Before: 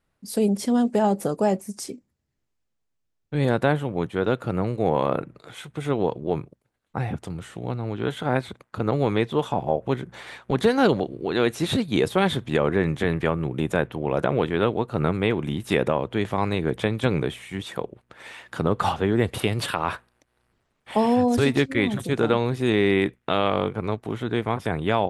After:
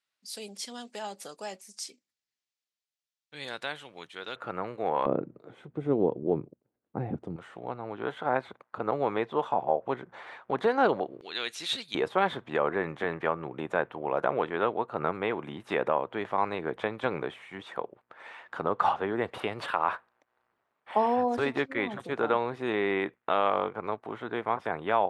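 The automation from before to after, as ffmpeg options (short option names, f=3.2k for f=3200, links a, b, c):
-af "asetnsamples=n=441:p=0,asendcmd='4.36 bandpass f 1300;5.06 bandpass f 330;7.36 bandpass f 930;11.21 bandpass f 4100;11.95 bandpass f 1000',bandpass=f=4.3k:t=q:w=1:csg=0"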